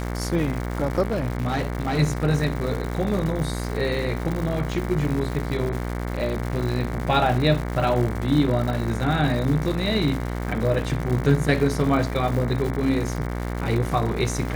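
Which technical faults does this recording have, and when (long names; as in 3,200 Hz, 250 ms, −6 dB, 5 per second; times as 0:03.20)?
mains buzz 60 Hz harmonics 38 −28 dBFS
surface crackle 250 per second −29 dBFS
0:01.03–0:01.99: clipping −20 dBFS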